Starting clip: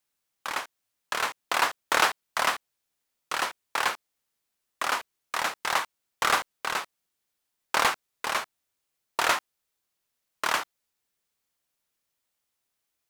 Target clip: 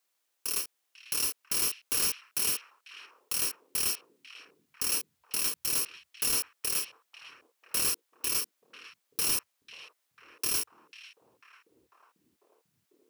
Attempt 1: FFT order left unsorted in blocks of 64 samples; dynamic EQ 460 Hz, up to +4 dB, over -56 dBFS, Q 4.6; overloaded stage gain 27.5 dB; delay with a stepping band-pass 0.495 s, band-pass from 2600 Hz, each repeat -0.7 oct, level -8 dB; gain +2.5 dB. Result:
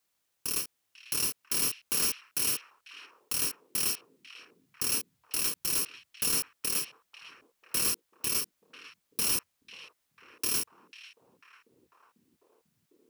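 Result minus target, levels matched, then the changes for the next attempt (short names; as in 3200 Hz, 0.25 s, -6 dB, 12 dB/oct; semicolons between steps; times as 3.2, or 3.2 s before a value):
250 Hz band +3.5 dB
add after dynamic EQ: HPF 350 Hz 12 dB/oct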